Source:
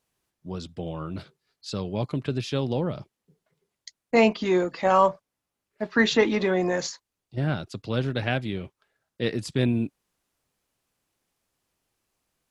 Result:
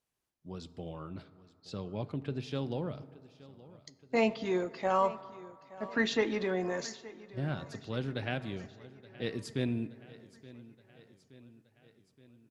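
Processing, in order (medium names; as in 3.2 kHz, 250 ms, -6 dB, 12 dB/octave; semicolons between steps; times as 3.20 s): 1.09–2.51 s: treble shelf 5.3 kHz -9 dB; feedback delay 873 ms, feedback 59%, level -19 dB; reverberation RT60 2.3 s, pre-delay 4 ms, DRR 15 dB; trim -9 dB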